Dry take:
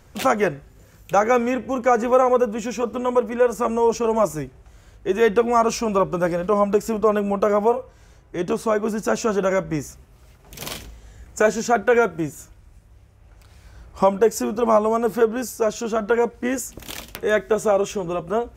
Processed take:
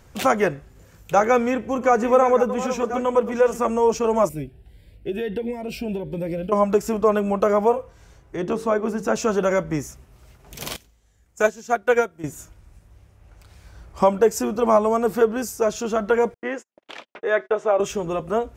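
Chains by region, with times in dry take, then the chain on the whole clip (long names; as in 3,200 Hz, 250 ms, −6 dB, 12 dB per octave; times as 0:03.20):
0:00.54–0:03.59: delay that plays each chunk backwards 630 ms, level −11 dB + high-shelf EQ 8,700 Hz −2.5 dB
0:04.29–0:06.52: downward compressor 4 to 1, threshold −20 dBFS + phaser with its sweep stopped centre 2,800 Hz, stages 4 + phaser whose notches keep moving one way rising 1.5 Hz
0:08.36–0:09.16: high-shelf EQ 3,800 Hz −8 dB + mains-hum notches 50/100/150/200/250/300/350/400/450/500 Hz
0:10.76–0:12.24: high-shelf EQ 3,800 Hz +7 dB + expander for the loud parts 2.5 to 1, over −24 dBFS
0:16.34–0:17.80: band-pass filter 410–2,700 Hz + noise gate −42 dBFS, range −42 dB
whole clip: no processing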